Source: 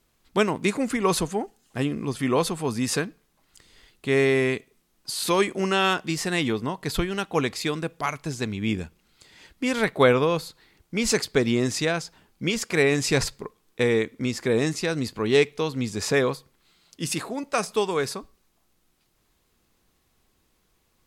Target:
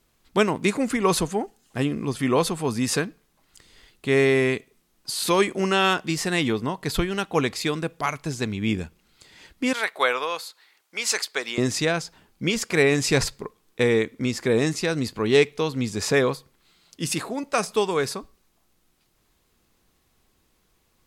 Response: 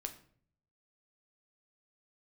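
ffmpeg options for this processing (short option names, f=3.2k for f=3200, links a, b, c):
-filter_complex "[0:a]asettb=1/sr,asplit=3[a][b][c];[a]atrim=end=9.734[d];[b]atrim=start=9.73:end=11.58,asetpts=PTS-STARTPTS,afade=t=in:d=0.004:c=qsin,afade=t=out:st=1.846:d=0.004:c=qsin,highpass=820[e];[c]atrim=start=11.576[f];[d][e]acrossfade=d=0.004:c1=hsin:c2=qsin[g];[g][f]acrossfade=d=0.004:c1=qsin:c2=hsin,volume=1.5dB"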